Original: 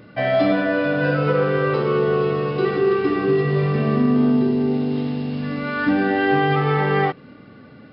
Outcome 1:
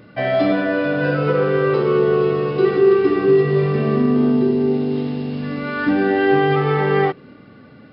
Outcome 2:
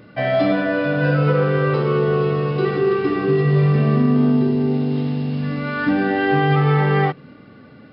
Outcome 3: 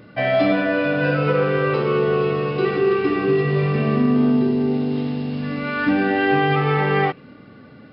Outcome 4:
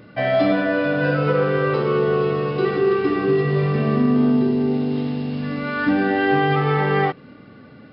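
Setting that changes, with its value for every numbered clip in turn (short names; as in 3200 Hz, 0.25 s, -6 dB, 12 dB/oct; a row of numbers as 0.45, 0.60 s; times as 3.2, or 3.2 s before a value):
dynamic EQ, frequency: 380, 150, 2500, 9000 Hz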